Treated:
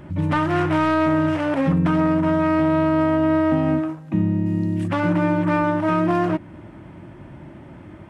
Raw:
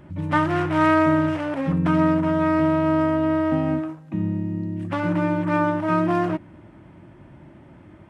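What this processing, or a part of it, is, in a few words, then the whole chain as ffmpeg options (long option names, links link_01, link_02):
soft clipper into limiter: -filter_complex "[0:a]asoftclip=type=tanh:threshold=-10.5dB,alimiter=limit=-17dB:level=0:latency=1:release=427,asettb=1/sr,asplit=3[link_01][link_02][link_03];[link_01]atrim=end=4.464[link_04];[link_02]atrim=start=4.46:end=4.88,asetpts=PTS-STARTPTS,afade=type=in:duration=0.004:curve=qsin,afade=type=out:start_time=0.416:duration=0.004:curve=qsin,highshelf=frequency=3000:gain=10[link_05];[link_03]atrim=start=4.876[link_06];[link_04][link_05]acrossfade=duration=0.004:curve1=hsin:curve2=qsin[link_07];[link_07][link_06]acrossfade=duration=0.004:curve1=qsin:curve2=hsin,volume=6dB"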